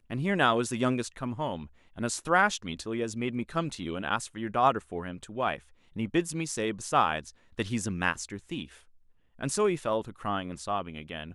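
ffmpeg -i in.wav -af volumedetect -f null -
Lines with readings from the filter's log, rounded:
mean_volume: -30.7 dB
max_volume: -10.0 dB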